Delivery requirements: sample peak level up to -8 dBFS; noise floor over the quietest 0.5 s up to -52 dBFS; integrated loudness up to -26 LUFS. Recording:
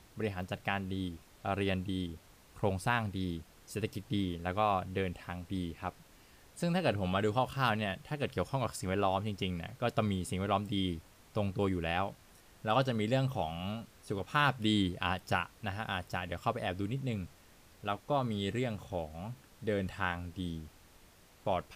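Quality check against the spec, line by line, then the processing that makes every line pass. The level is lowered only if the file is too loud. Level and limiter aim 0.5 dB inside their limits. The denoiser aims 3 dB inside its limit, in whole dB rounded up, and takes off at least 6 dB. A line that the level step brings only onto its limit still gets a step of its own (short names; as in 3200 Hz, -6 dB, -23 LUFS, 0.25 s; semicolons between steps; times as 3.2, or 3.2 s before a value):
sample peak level -14.5 dBFS: OK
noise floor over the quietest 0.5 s -60 dBFS: OK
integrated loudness -35.0 LUFS: OK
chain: none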